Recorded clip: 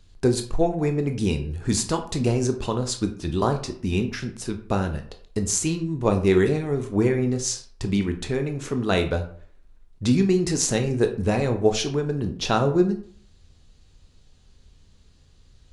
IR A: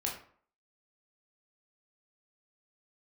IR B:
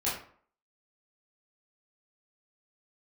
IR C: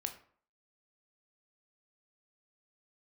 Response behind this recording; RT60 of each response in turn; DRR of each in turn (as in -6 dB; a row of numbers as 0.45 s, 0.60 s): C; 0.50 s, 0.50 s, 0.50 s; -2.0 dB, -9.0 dB, 5.5 dB